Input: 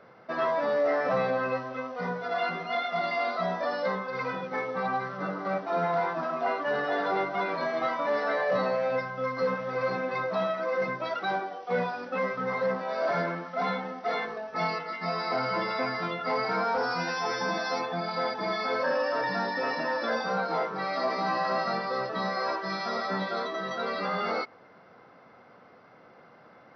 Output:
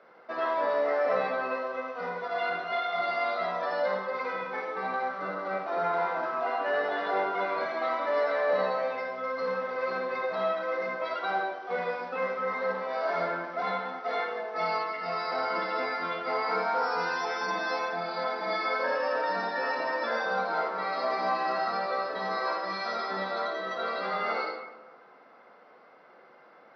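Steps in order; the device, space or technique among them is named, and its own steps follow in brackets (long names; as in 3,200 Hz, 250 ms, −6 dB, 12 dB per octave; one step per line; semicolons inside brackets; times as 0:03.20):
supermarket ceiling speaker (band-pass filter 330–5,300 Hz; convolution reverb RT60 1.1 s, pre-delay 47 ms, DRR 1.5 dB)
level −2.5 dB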